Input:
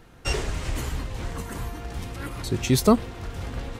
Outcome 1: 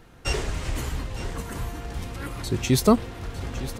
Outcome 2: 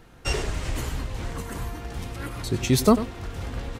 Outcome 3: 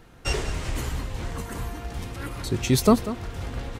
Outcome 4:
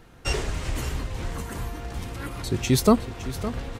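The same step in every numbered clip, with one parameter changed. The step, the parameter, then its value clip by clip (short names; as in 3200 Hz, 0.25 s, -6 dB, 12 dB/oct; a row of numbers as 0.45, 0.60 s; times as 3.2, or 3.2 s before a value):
echo, time: 909, 95, 192, 562 ms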